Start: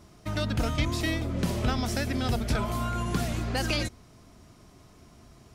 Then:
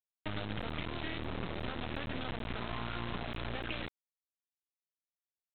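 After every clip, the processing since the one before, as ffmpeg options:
-af "highpass=f=69:p=1,acompressor=threshold=0.0158:ratio=10,aresample=8000,acrusher=bits=4:dc=4:mix=0:aa=0.000001,aresample=44100,volume=1.5"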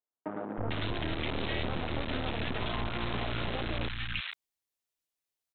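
-filter_complex "[0:a]acrossover=split=190|1300[s0][s1][s2];[s0]adelay=320[s3];[s2]adelay=450[s4];[s3][s1][s4]amix=inputs=3:normalize=0,volume=2.11"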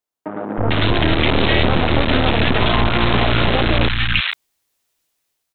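-af "dynaudnorm=f=230:g=5:m=3.16,volume=2.51"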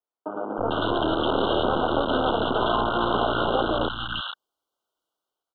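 -filter_complex "[0:a]asuperstop=centerf=2100:order=20:qfactor=1.6,acrossover=split=280 2800:gain=0.178 1 0.158[s0][s1][s2];[s0][s1][s2]amix=inputs=3:normalize=0,volume=0.75"

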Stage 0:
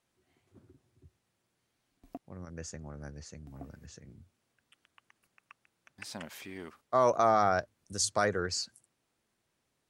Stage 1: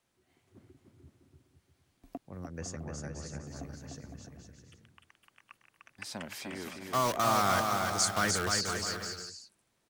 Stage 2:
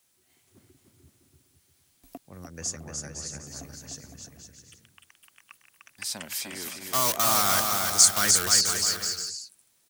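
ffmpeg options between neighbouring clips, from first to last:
-filter_complex "[0:a]acrossover=split=360|810[s0][s1][s2];[s1]aeval=exprs='(mod(53.1*val(0)+1,2)-1)/53.1':c=same[s3];[s0][s3][s2]amix=inputs=3:normalize=0,aecho=1:1:300|510|657|759.9|831.9:0.631|0.398|0.251|0.158|0.1,volume=1.19"
-af "crystalizer=i=5:c=0,volume=0.841"

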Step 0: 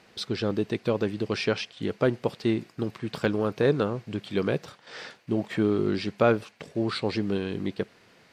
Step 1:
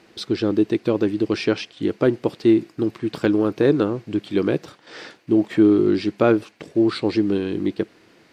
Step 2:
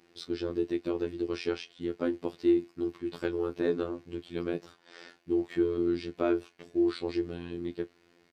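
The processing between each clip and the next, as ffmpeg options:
-af "equalizer=f=320:t=o:w=0.45:g=11.5,volume=1.26"
-filter_complex "[0:a]afftfilt=real='hypot(re,im)*cos(PI*b)':imag='0':win_size=2048:overlap=0.75,asplit=2[s0][s1];[s1]adelay=26,volume=0.2[s2];[s0][s2]amix=inputs=2:normalize=0,volume=0.376"

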